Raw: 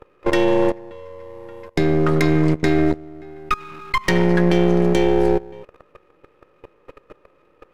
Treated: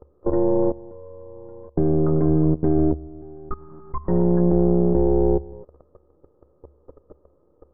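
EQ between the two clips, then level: Gaussian low-pass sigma 10 samples; peaking EQ 72 Hz +15 dB 0.2 oct; -1.0 dB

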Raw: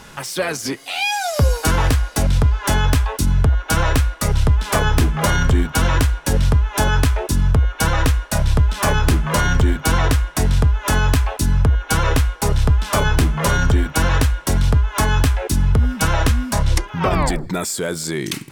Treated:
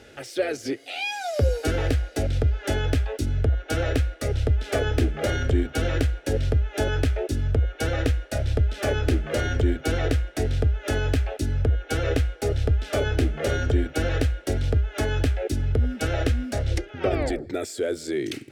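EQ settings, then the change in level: high-pass 76 Hz 12 dB/octave; low-pass 1.5 kHz 6 dB/octave; static phaser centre 420 Hz, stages 4; 0.0 dB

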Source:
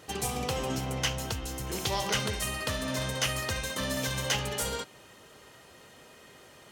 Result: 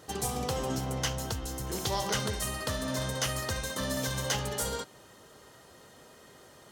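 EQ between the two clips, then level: peaking EQ 2.5 kHz -8 dB 0.65 oct; 0.0 dB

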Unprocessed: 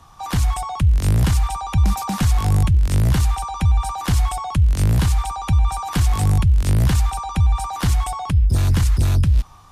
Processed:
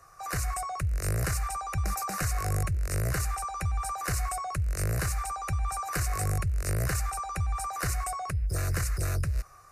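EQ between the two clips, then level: peaking EQ 70 Hz -4.5 dB 0.36 oct; bass shelf 180 Hz -12 dB; static phaser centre 900 Hz, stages 6; -1.0 dB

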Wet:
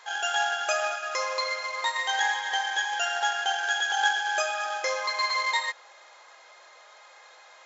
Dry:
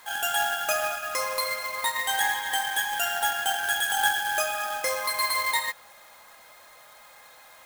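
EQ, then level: brick-wall FIR band-pass 320–7500 Hz; 0.0 dB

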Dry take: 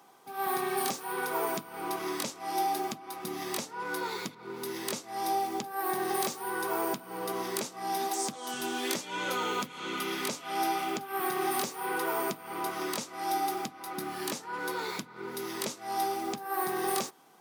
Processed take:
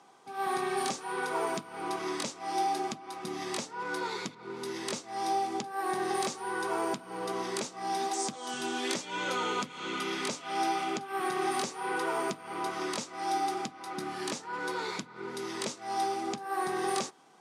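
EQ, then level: low-pass 9 kHz 24 dB/octave; 0.0 dB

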